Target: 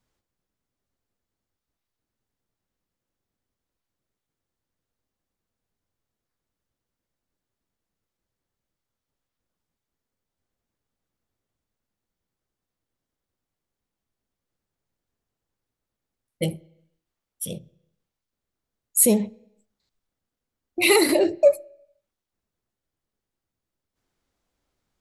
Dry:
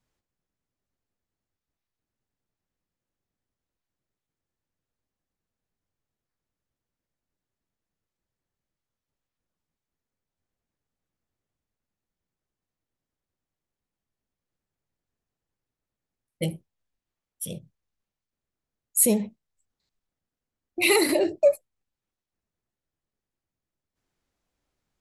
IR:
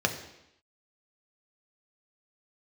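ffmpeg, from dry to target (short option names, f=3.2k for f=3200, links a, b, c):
-filter_complex "[0:a]asplit=2[a][b];[1:a]atrim=start_sample=2205,lowpass=6.9k[c];[b][c]afir=irnorm=-1:irlink=0,volume=-27.5dB[d];[a][d]amix=inputs=2:normalize=0,volume=2.5dB"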